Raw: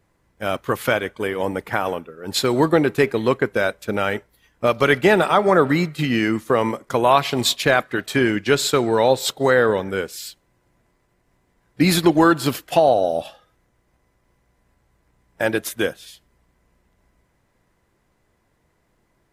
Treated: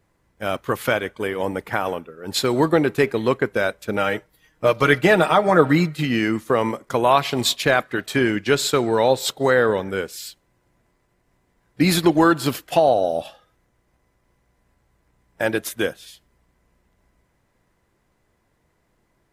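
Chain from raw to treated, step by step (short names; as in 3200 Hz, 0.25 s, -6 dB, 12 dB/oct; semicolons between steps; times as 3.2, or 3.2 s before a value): 3.97–5.99 comb 6.4 ms, depth 57%; gain -1 dB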